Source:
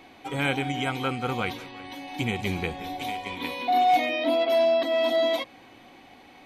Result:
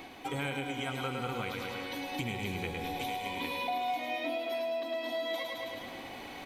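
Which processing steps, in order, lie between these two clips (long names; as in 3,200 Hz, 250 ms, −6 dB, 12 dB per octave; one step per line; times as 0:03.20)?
on a send: repeating echo 106 ms, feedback 52%, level −6 dB
on the sum: reversed playback
upward compression, threshold −37 dBFS
reversed playback
high-shelf EQ 9,600 Hz +6.5 dB
downward compressor, threshold −33 dBFS, peak gain reduction 15.5 dB
feedback echo at a low word length 108 ms, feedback 80%, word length 10 bits, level −13.5 dB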